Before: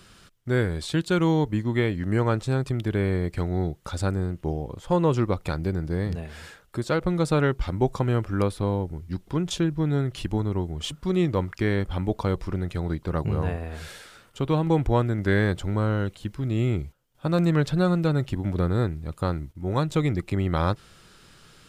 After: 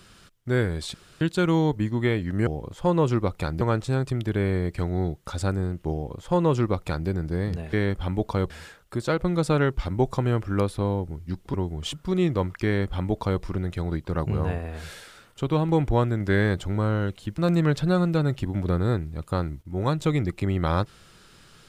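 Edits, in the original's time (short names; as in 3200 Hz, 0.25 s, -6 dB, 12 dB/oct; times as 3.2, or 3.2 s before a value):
0.94 insert room tone 0.27 s
4.53–5.67 copy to 2.2
9.36–10.52 cut
11.63–12.4 copy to 6.32
16.36–17.28 cut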